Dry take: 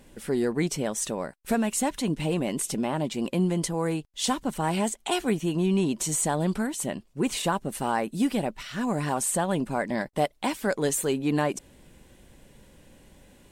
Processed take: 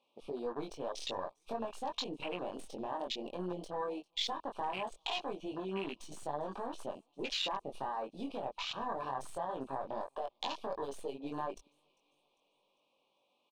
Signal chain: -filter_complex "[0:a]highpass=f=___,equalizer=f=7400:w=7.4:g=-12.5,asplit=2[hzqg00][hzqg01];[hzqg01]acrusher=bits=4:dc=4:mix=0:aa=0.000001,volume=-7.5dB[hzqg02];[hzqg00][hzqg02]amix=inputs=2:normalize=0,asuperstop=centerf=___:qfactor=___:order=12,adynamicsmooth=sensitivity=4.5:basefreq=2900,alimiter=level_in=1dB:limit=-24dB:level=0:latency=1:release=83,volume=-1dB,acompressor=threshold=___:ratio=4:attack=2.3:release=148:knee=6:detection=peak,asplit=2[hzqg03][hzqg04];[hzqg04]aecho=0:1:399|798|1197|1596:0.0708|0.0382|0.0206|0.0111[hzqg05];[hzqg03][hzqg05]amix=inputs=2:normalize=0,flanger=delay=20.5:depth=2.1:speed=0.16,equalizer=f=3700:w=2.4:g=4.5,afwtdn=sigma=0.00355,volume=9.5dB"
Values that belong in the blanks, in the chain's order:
850, 1700, 1.6, -40dB